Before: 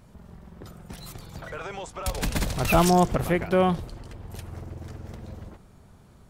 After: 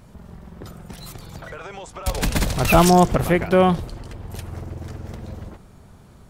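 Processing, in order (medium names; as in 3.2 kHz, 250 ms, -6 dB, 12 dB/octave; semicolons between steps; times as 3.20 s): 0.76–2.07 s: compression, threshold -38 dBFS, peak gain reduction 8 dB; trim +5.5 dB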